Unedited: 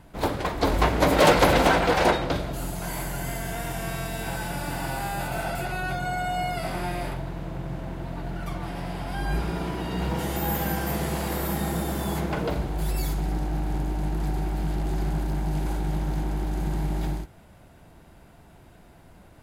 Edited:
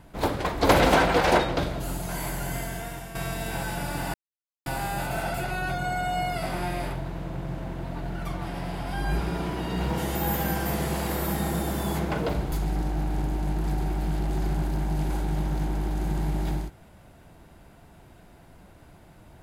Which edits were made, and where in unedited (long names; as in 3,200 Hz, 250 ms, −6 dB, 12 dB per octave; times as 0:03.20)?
0:00.69–0:01.42: remove
0:03.29–0:03.88: fade out, to −10.5 dB
0:04.87: splice in silence 0.52 s
0:12.73–0:13.08: remove